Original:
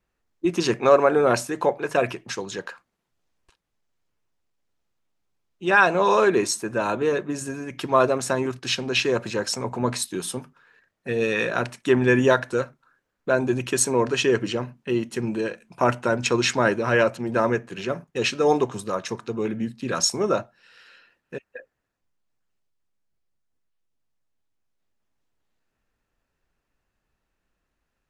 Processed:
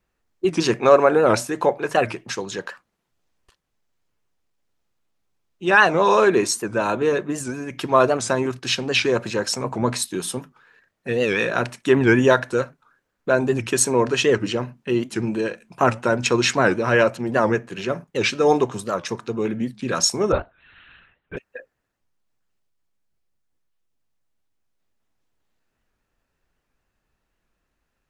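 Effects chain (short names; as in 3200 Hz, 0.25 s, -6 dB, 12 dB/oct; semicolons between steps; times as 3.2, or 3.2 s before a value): 20.32–21.37 LPC vocoder at 8 kHz whisper; record warp 78 rpm, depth 160 cents; gain +2.5 dB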